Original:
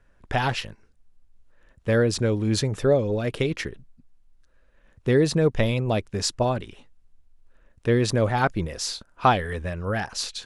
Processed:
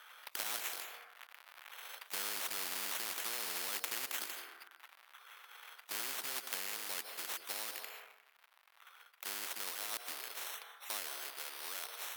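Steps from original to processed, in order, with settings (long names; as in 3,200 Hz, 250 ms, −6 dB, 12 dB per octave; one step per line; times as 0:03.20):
source passing by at 0:02.41, 10 m/s, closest 9 metres
brickwall limiter −21 dBFS, peak gain reduction 10 dB
high-shelf EQ 2,300 Hz −8 dB
bad sample-rate conversion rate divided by 8×, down none, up hold
floating-point word with a short mantissa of 2 bits
Bessel high-pass filter 1,700 Hz, order 4
speed change −14%
parametric band 7,100 Hz −13 dB 1 octave
on a send at −18 dB: convolution reverb RT60 0.70 s, pre-delay 149 ms
on the sum: every bin compressed towards the loudest bin 4 to 1
level +13.5 dB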